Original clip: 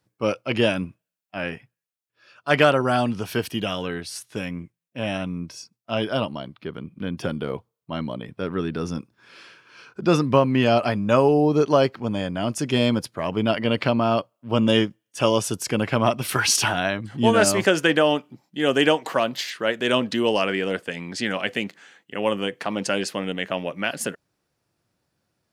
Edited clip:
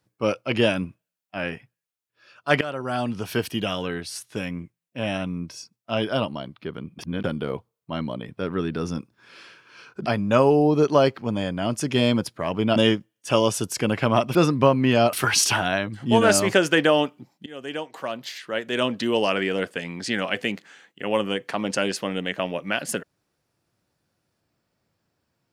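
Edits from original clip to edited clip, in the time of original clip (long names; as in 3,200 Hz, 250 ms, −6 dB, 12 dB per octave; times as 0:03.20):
0:02.61–0:03.33: fade in, from −19 dB
0:06.99–0:07.24: reverse
0:10.06–0:10.84: move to 0:16.25
0:13.54–0:14.66: remove
0:18.58–0:20.51: fade in, from −21.5 dB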